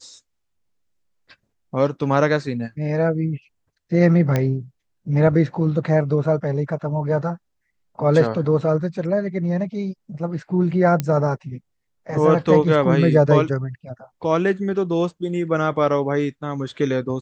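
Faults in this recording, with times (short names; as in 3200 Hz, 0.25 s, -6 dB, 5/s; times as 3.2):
4.36 pop -8 dBFS
11 pop -9 dBFS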